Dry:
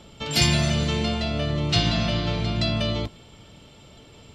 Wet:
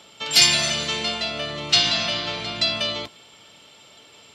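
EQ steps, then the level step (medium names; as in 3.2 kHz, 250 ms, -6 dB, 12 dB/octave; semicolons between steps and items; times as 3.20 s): high-pass 1.1 kHz 6 dB/octave; dynamic bell 5.7 kHz, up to +4 dB, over -34 dBFS, Q 0.73; +5.0 dB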